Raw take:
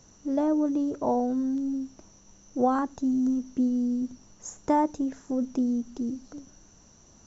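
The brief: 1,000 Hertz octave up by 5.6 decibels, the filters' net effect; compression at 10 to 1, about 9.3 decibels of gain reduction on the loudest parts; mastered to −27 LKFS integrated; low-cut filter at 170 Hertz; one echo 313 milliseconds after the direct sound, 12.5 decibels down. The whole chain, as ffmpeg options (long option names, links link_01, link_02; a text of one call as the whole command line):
ffmpeg -i in.wav -af "highpass=170,equalizer=frequency=1000:width_type=o:gain=7,acompressor=threshold=-25dB:ratio=10,aecho=1:1:313:0.237,volume=4dB" out.wav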